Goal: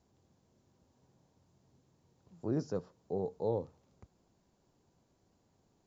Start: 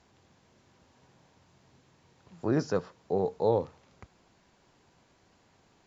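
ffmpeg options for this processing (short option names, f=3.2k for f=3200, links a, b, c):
-af "equalizer=f=2.1k:w=0.51:g=-13,volume=-5dB"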